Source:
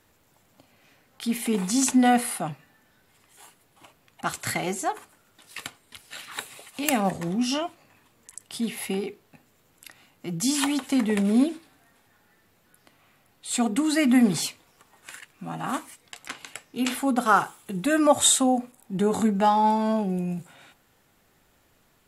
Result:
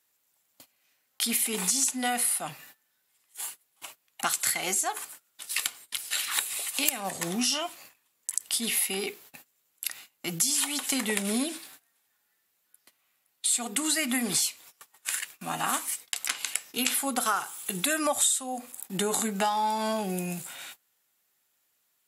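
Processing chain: gate -54 dBFS, range -21 dB; tilt +4 dB/oct; compressor 6:1, threshold -29 dBFS, peak gain reduction 22.5 dB; gain +4.5 dB

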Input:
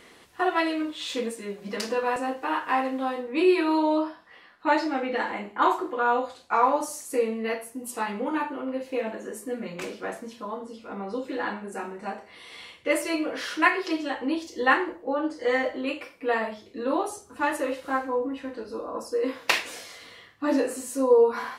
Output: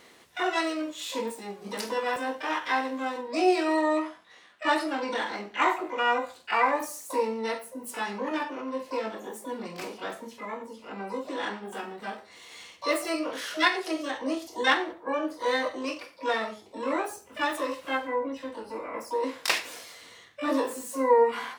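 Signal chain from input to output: HPF 80 Hz 6 dB/oct; harmoniser +12 st -5 dB; gain -3.5 dB

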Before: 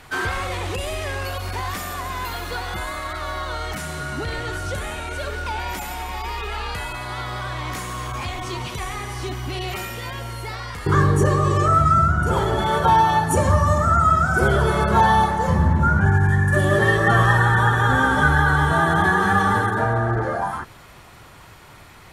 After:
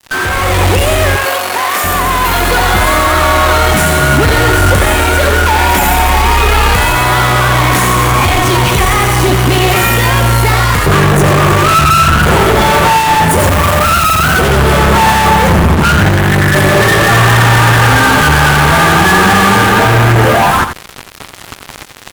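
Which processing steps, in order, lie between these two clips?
fuzz box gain 37 dB, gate -39 dBFS; 1.16–1.84 HPF 450 Hz 12 dB/oct; 13.39–14.37 high shelf 12000 Hz +9.5 dB; echo 87 ms -9 dB; AGC gain up to 8.5 dB; dynamic EQ 5000 Hz, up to -5 dB, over -26 dBFS, Q 1.1

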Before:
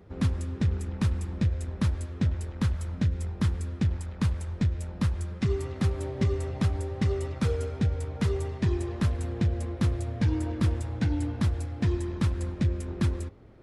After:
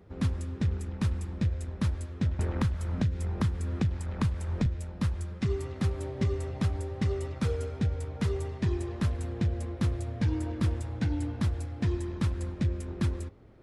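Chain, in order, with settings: 2.39–4.66 three-band squash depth 100%; gain -2.5 dB

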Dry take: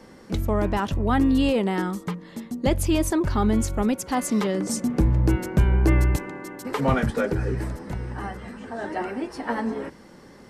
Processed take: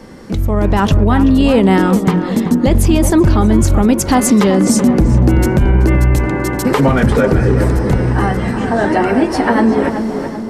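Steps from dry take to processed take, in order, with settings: low shelf 220 Hz +6.5 dB; notches 60/120/180 Hz; in parallel at +2.5 dB: compressor, threshold -29 dBFS, peak gain reduction 18.5 dB; on the sum: limiter -14 dBFS, peak gain reduction 11 dB; AGC gain up to 9 dB; on a send: tape echo 0.381 s, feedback 60%, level -4 dB, low-pass 1400 Hz; on the sum: gain +1.5 dB

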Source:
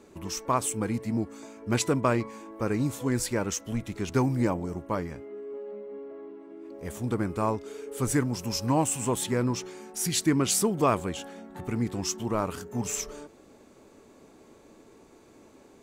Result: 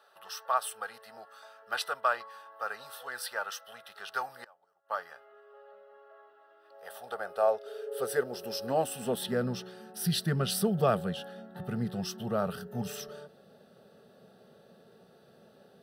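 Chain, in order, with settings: fixed phaser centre 1500 Hz, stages 8; 4.44–4.91 flipped gate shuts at -29 dBFS, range -25 dB; high-pass sweep 1000 Hz -> 170 Hz, 6.61–9.69

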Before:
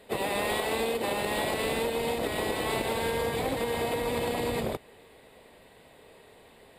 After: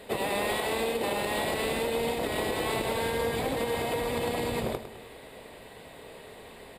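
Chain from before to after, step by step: compressor 2:1, threshold -40 dBFS, peak gain reduction 8.5 dB; feedback echo 0.104 s, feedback 48%, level -11 dB; gain +7 dB

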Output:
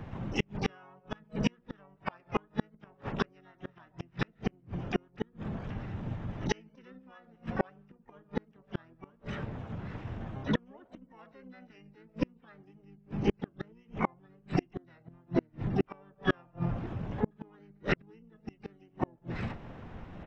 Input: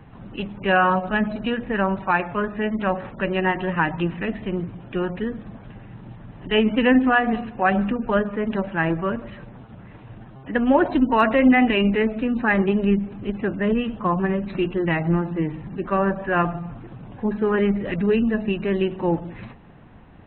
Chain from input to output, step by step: harmoniser -5 st -2 dB, +12 st -13 dB; flipped gate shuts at -14 dBFS, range -39 dB

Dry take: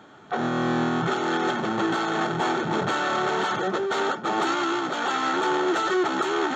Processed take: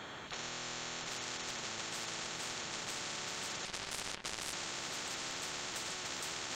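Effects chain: limiter -18.5 dBFS, peak gain reduction 4.5 dB; diffused feedback echo 0.455 s, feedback 55%, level -9 dB; 3.65–4.53 power-law curve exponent 3; spectral compressor 10:1; gain -4 dB

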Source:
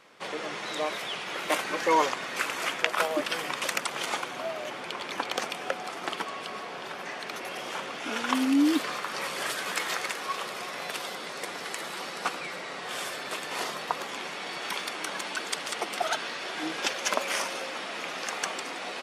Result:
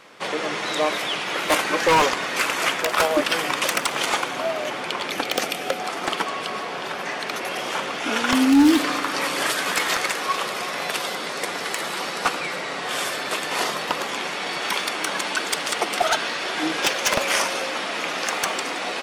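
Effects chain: 5.1–5.8 thirty-one-band EQ 1000 Hz -10 dB, 1600 Hz -3 dB, 12500 Hz +9 dB; wavefolder -19 dBFS; FDN reverb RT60 2.2 s, low-frequency decay 1.55×, high-frequency decay 0.95×, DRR 18.5 dB; gain +8.5 dB

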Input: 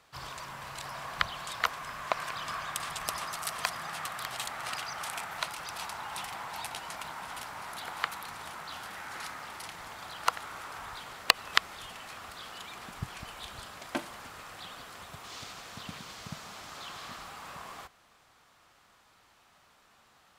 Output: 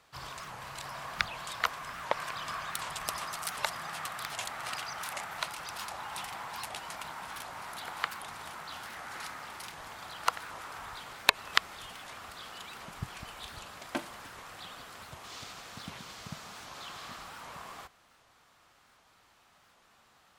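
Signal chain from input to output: record warp 78 rpm, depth 250 cents; gain -1 dB

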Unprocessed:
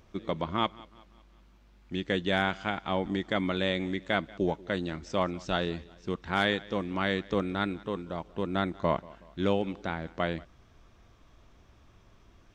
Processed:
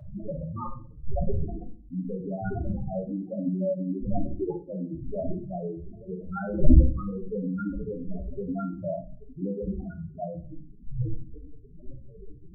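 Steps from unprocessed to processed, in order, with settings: wind noise 640 Hz -27 dBFS; low shelf 110 Hz +4.5 dB; loudest bins only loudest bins 2; on a send: reverb RT60 0.40 s, pre-delay 7 ms, DRR 3 dB; on the sum: gain +2.5 dB

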